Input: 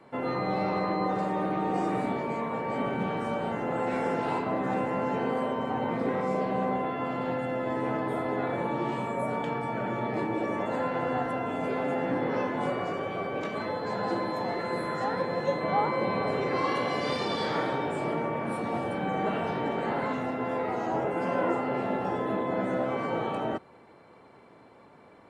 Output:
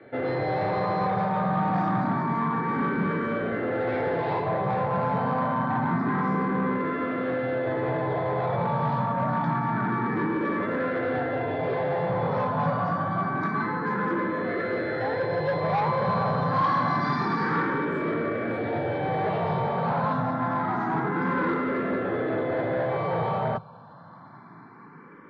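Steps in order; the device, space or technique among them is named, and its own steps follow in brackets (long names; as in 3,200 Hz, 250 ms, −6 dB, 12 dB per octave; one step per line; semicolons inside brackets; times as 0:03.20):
barber-pole phaser into a guitar amplifier (frequency shifter mixed with the dry sound +0.27 Hz; soft clipping −30 dBFS, distortion −13 dB; loudspeaker in its box 82–4,100 Hz, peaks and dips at 110 Hz +9 dB, 160 Hz +9 dB, 1,100 Hz +5 dB, 1,600 Hz +5 dB, 2,800 Hz −10 dB)
level +7.5 dB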